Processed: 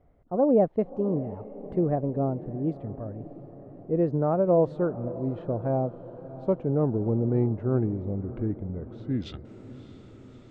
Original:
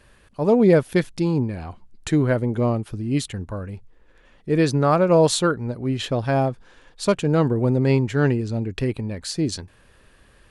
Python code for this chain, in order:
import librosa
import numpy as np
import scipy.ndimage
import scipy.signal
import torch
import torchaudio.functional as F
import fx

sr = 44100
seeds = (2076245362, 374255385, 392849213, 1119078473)

y = fx.speed_glide(x, sr, from_pct=124, to_pct=76)
y = fx.filter_sweep_lowpass(y, sr, from_hz=660.0, to_hz=5600.0, start_s=8.96, end_s=9.5, q=1.1)
y = fx.echo_diffused(y, sr, ms=623, feedback_pct=62, wet_db=-16)
y = F.gain(torch.from_numpy(y), -6.5).numpy()